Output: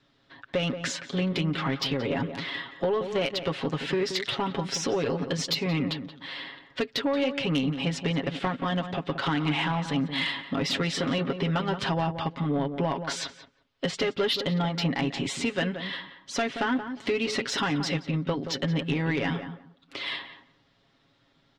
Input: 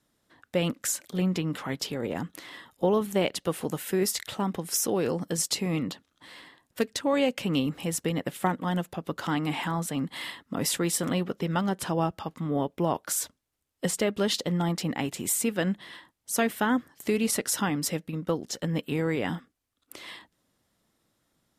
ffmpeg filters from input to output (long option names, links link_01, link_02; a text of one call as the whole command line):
ffmpeg -i in.wav -filter_complex "[0:a]lowpass=frequency=4000:width=0.5412,lowpass=frequency=4000:width=1.3066,highshelf=frequency=2400:gain=9,aecho=1:1:7.3:0.67,acompressor=threshold=-29dB:ratio=3,asoftclip=type=tanh:threshold=-23dB,asplit=2[link_01][link_02];[link_02]adelay=177,lowpass=frequency=1500:poles=1,volume=-8.5dB,asplit=2[link_03][link_04];[link_04]adelay=177,lowpass=frequency=1500:poles=1,volume=0.2,asplit=2[link_05][link_06];[link_06]adelay=177,lowpass=frequency=1500:poles=1,volume=0.2[link_07];[link_03][link_05][link_07]amix=inputs=3:normalize=0[link_08];[link_01][link_08]amix=inputs=2:normalize=0,volume=5dB" out.wav